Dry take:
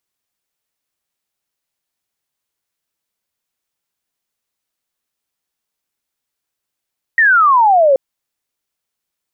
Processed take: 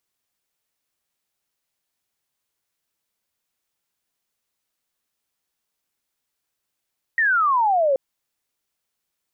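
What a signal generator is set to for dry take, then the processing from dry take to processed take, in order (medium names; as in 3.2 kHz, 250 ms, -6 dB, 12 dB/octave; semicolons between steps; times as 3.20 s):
laser zap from 1.9 kHz, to 520 Hz, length 0.78 s sine, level -7 dB
peak limiter -15.5 dBFS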